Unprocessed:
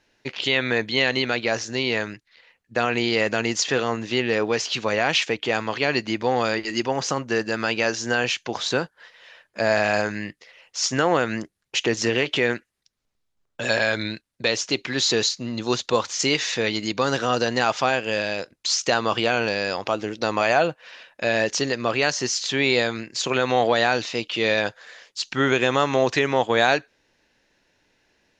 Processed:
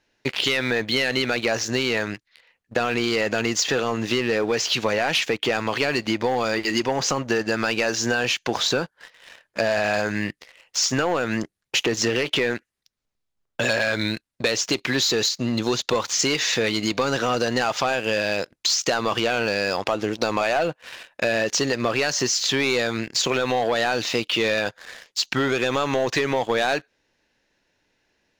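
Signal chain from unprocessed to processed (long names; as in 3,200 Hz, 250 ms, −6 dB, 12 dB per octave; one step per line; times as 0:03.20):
leveller curve on the samples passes 2
downward compressor, threshold −19 dBFS, peak gain reduction 8.5 dB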